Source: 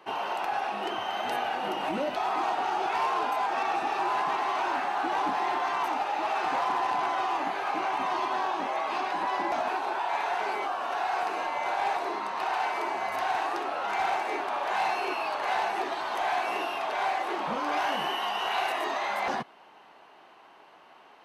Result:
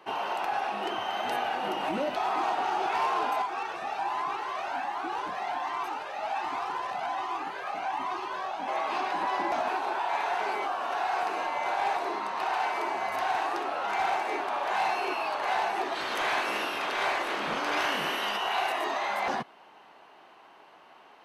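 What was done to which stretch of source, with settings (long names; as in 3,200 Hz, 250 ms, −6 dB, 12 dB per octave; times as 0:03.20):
0:03.42–0:08.68: flanger whose copies keep moving one way rising 1.3 Hz
0:15.94–0:18.36: ceiling on every frequency bin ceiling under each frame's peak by 14 dB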